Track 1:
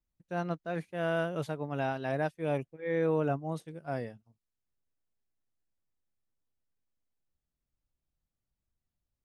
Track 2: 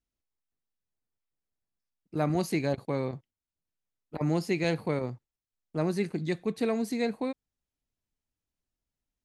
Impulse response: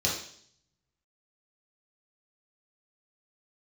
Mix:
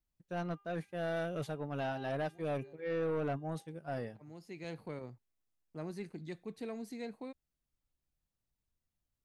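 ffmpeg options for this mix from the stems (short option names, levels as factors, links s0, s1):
-filter_complex "[0:a]bandreject=f=400.9:t=h:w=4,bandreject=f=801.8:t=h:w=4,bandreject=f=1202.7:t=h:w=4,bandreject=f=1603.6:t=h:w=4,bandreject=f=2004.5:t=h:w=4,bandreject=f=2405.4:t=h:w=4,bandreject=f=2806.3:t=h:w=4,bandreject=f=3207.2:t=h:w=4,bandreject=f=3608.1:t=h:w=4,volume=0.841,asplit=2[s0][s1];[1:a]volume=0.224[s2];[s1]apad=whole_len=407893[s3];[s2][s3]sidechaincompress=threshold=0.00282:ratio=12:attack=41:release=599[s4];[s0][s4]amix=inputs=2:normalize=0,asoftclip=type=tanh:threshold=0.0335"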